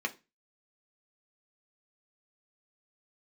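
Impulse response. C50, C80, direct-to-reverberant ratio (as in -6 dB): 19.5 dB, 26.0 dB, 2.0 dB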